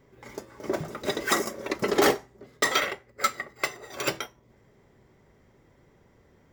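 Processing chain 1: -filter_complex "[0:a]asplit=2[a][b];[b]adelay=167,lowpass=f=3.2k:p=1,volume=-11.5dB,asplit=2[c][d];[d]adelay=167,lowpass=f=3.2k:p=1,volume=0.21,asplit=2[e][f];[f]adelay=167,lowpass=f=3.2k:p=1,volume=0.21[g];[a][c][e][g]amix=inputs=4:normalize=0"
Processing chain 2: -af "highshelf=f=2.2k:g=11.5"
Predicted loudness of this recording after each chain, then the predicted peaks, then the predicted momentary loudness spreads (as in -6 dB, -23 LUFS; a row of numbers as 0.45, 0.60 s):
-28.0, -22.5 LUFS; -9.0, -2.0 dBFS; 15, 15 LU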